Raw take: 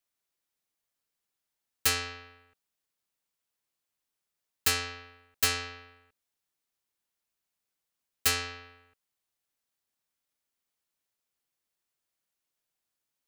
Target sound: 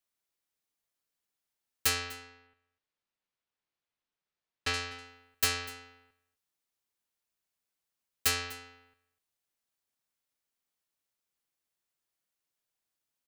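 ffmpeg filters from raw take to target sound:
-filter_complex "[0:a]asettb=1/sr,asplit=3[s0][s1][s2];[s0]atrim=end=2.224[s3];[s1]atrim=start=2.22:end=4.74,asetpts=PTS-STARTPTS,afade=t=in:d=0.004:c=qsin,afade=t=out:st=2.516:d=0.004:c=qsin,lowpass=4000[s4];[s2]atrim=start=4.736[s5];[s3][s4]acrossfade=d=0.004:c1=hsin:c2=qsin[s6];[s6][s5]acrossfade=d=0.004:c1=qsin:c2=hsin,aecho=1:1:248:0.106,volume=0.794"

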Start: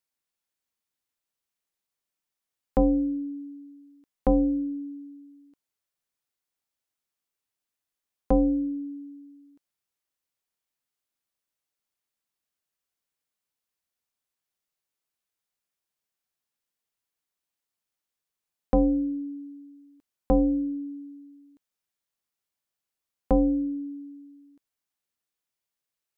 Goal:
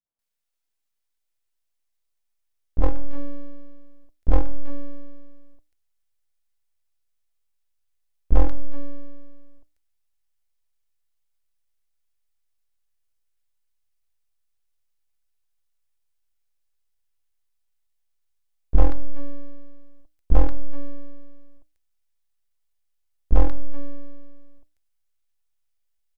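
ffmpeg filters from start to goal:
-filter_complex "[0:a]bandreject=f=50:t=h:w=6,bandreject=f=100:t=h:w=6,bandreject=f=150:t=h:w=6,bandreject=f=200:t=h:w=6,bandreject=f=250:t=h:w=6,bandreject=f=300:t=h:w=6,acrossover=split=260|1100[s0][s1][s2];[s1]adelay=50[s3];[s2]adelay=190[s4];[s0][s3][s4]amix=inputs=3:normalize=0,aeval=exprs='max(val(0),0)':c=same,asubboost=boost=11:cutoff=57,asplit=2[s5][s6];[s6]aeval=exprs='0.126*(abs(mod(val(0)/0.126+3,4)-2)-1)':c=same,volume=0.562[s7];[s5][s7]amix=inputs=2:normalize=0,volume=1.12"

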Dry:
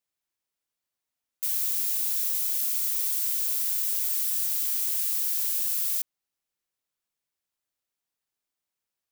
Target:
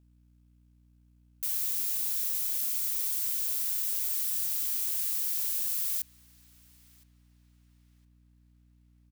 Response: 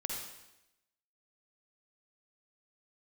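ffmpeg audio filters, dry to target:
-filter_complex "[0:a]asplit=2[s0][s1];[s1]adelay=1015,lowpass=f=2500:p=1,volume=0.141,asplit=2[s2][s3];[s3]adelay=1015,lowpass=f=2500:p=1,volume=0.51,asplit=2[s4][s5];[s5]adelay=1015,lowpass=f=2500:p=1,volume=0.51,asplit=2[s6][s7];[s7]adelay=1015,lowpass=f=2500:p=1,volume=0.51[s8];[s0][s2][s4][s6][s8]amix=inputs=5:normalize=0,aeval=exprs='val(0)+0.00141*(sin(2*PI*60*n/s)+sin(2*PI*2*60*n/s)/2+sin(2*PI*3*60*n/s)/3+sin(2*PI*4*60*n/s)/4+sin(2*PI*5*60*n/s)/5)':c=same,acrusher=bits=6:mode=log:mix=0:aa=0.000001,volume=0.668"

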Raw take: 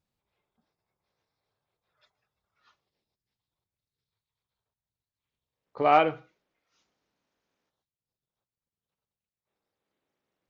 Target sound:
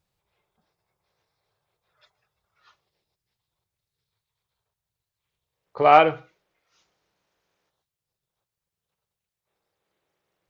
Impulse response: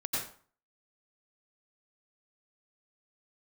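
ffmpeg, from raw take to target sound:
-af "equalizer=f=250:w=4.4:g=-14.5,volume=2.11"

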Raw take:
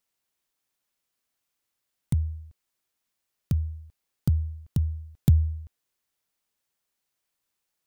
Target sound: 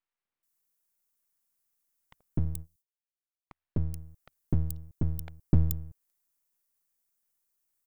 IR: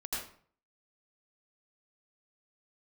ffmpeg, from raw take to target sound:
-filter_complex "[0:a]asettb=1/sr,asplit=3[s0][s1][s2];[s0]atrim=end=2.204[s3];[s1]atrim=start=2.2:end=3.58,asetpts=PTS-STARTPTS,afade=t=in:d=0.004:c=qsin,afade=t=out:st=1.376:d=0.004:c=qsin,agate=range=0.0562:threshold=0.0158:ratio=16:detection=peak[s4];[s2]atrim=start=3.576[s5];[s3][s4]acrossfade=d=0.004:c1=hsin:c2=qsin[s6];[s6][s5]acrossfade=d=0.004:c1=qsin:c2=hsin,acrossover=split=650|3100[s7][s8][s9];[s7]adelay=250[s10];[s9]adelay=430[s11];[s10][s8][s11]amix=inputs=3:normalize=0,acrossover=split=3600[s12][s13];[s12]aeval=exprs='max(val(0),0)':c=same[s14];[s13]aderivative[s15];[s14][s15]amix=inputs=2:normalize=0"

